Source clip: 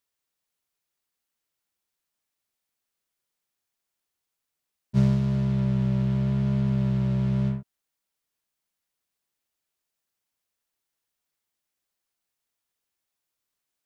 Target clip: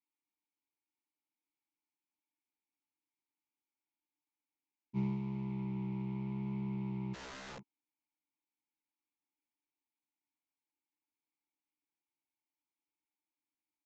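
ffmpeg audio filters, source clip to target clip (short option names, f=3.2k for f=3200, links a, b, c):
-filter_complex "[0:a]asplit=3[a][b][c];[a]bandpass=f=300:t=q:w=8,volume=0dB[d];[b]bandpass=f=870:t=q:w=8,volume=-6dB[e];[c]bandpass=f=2.24k:t=q:w=8,volume=-9dB[f];[d][e][f]amix=inputs=3:normalize=0,asplit=3[g][h][i];[g]afade=t=out:st=7.13:d=0.02[j];[h]aeval=exprs='(mod(237*val(0)+1,2)-1)/237':c=same,afade=t=in:st=7.13:d=0.02,afade=t=out:st=7.58:d=0.02[k];[i]afade=t=in:st=7.58:d=0.02[l];[j][k][l]amix=inputs=3:normalize=0,aresample=16000,aresample=44100,volume=4dB"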